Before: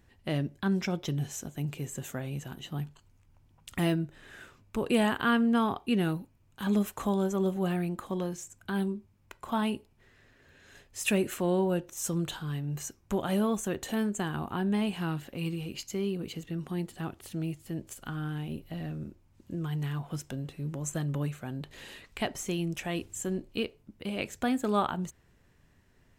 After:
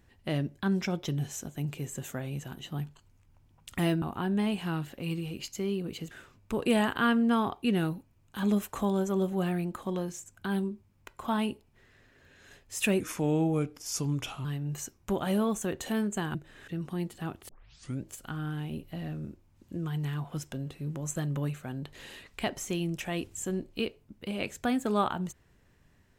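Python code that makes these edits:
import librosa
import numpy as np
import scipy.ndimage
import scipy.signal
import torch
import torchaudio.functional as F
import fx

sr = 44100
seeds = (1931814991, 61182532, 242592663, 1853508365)

y = fx.edit(x, sr, fx.swap(start_s=4.02, length_s=0.33, other_s=14.37, other_length_s=2.09),
    fx.speed_span(start_s=11.24, length_s=1.23, speed=0.85),
    fx.tape_start(start_s=17.27, length_s=0.57), tone=tone)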